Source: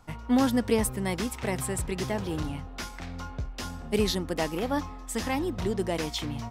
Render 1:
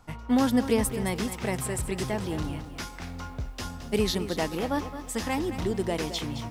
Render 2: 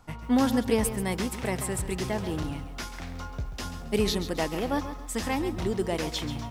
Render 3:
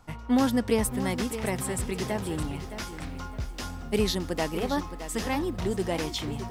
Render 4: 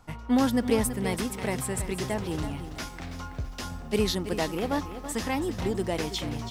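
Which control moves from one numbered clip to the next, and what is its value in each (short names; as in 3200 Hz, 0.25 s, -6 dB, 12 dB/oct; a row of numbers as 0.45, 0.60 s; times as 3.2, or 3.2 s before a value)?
lo-fi delay, time: 0.218, 0.136, 0.617, 0.329 s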